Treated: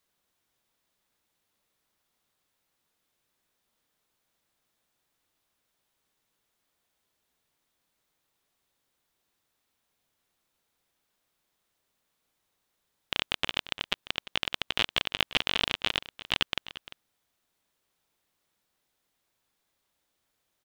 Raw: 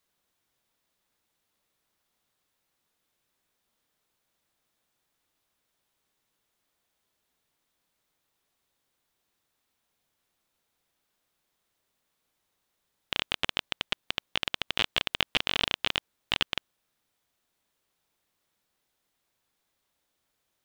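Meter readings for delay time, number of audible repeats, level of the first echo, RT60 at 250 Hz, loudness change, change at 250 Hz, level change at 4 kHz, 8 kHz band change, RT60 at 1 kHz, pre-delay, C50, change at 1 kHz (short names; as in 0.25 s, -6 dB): 0.347 s, 1, -15.5 dB, none, 0.0 dB, 0.0 dB, 0.0 dB, 0.0 dB, none, none, none, 0.0 dB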